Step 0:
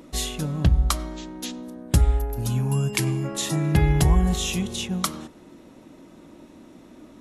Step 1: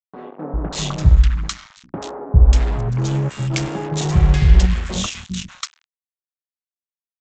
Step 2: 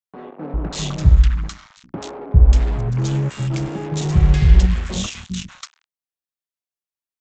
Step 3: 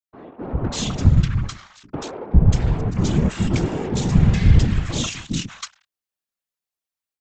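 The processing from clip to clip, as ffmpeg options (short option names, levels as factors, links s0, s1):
-filter_complex "[0:a]lowshelf=f=85:g=11,aresample=16000,acrusher=bits=3:mix=0:aa=0.5,aresample=44100,acrossover=split=220|1300[s0][s1][s2];[s0]adelay=400[s3];[s2]adelay=590[s4];[s3][s1][s4]amix=inputs=3:normalize=0,volume=1.12"
-filter_complex "[0:a]acrossover=split=450|1400[s0][s1][s2];[s1]asoftclip=type=tanh:threshold=0.0168[s3];[s2]alimiter=limit=0.112:level=0:latency=1:release=447[s4];[s0][s3][s4]amix=inputs=3:normalize=0"
-af "bandreject=f=60:t=h:w=6,bandreject=f=120:t=h:w=6,afftfilt=real='hypot(re,im)*cos(2*PI*random(0))':imag='hypot(re,im)*sin(2*PI*random(1))':win_size=512:overlap=0.75,dynaudnorm=f=310:g=3:m=2.82"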